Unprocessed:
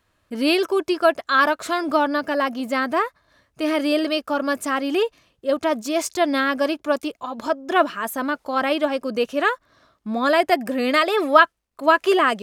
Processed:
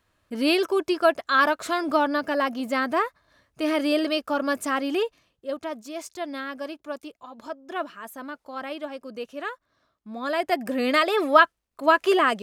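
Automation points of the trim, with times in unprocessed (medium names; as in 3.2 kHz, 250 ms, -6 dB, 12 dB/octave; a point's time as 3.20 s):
4.81 s -2.5 dB
5.83 s -12.5 dB
10.08 s -12.5 dB
10.73 s -2.5 dB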